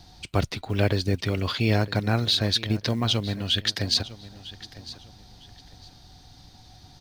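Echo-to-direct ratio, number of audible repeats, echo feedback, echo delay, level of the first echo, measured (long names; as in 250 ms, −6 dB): −16.5 dB, 2, 26%, 954 ms, −17.0 dB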